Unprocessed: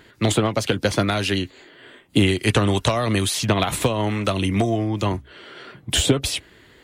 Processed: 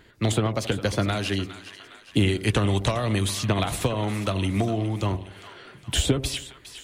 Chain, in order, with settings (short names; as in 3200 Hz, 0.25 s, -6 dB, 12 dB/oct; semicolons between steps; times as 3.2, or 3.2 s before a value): low shelf 73 Hz +11 dB; split-band echo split 860 Hz, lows 81 ms, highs 0.41 s, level -13 dB; gain -5.5 dB